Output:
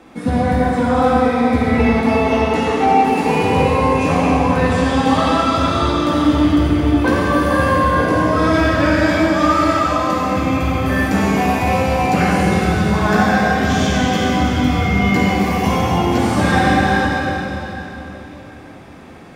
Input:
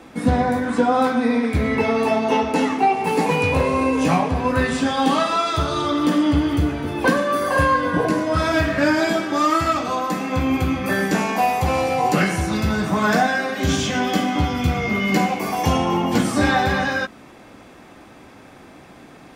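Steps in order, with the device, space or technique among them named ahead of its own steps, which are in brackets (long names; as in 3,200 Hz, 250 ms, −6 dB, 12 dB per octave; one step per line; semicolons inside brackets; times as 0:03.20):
swimming-pool hall (convolution reverb RT60 3.5 s, pre-delay 44 ms, DRR −4.5 dB; high-shelf EQ 5,200 Hz −4.5 dB)
level −1.5 dB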